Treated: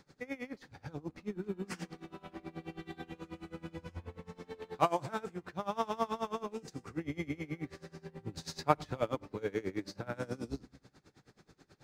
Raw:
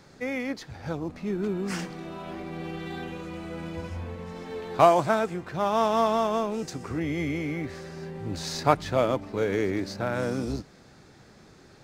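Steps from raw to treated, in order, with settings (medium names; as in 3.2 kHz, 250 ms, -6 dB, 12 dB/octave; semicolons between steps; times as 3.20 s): band-stop 650 Hz, Q 12; reverberation RT60 0.70 s, pre-delay 7 ms, DRR 15.5 dB; logarithmic tremolo 9.3 Hz, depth 23 dB; trim -5 dB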